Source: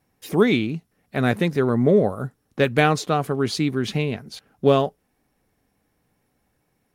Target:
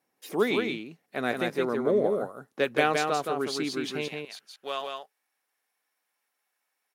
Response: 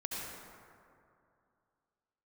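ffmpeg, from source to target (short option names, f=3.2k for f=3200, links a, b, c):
-af "asetnsamples=n=441:p=0,asendcmd='4.08 highpass f 1100',highpass=320,aecho=1:1:169:0.631,volume=-5.5dB"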